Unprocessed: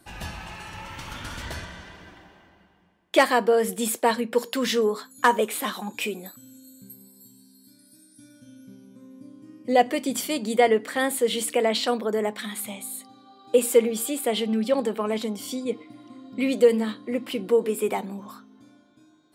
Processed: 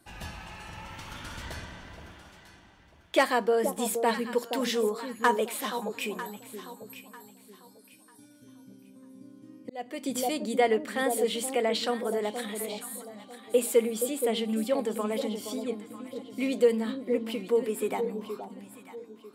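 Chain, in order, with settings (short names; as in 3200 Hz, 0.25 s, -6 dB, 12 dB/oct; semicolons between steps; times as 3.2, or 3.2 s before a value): echo with dull and thin repeats by turns 0.473 s, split 900 Hz, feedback 52%, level -7 dB; 9.62–10.03 auto swell 0.515 s; gain -5 dB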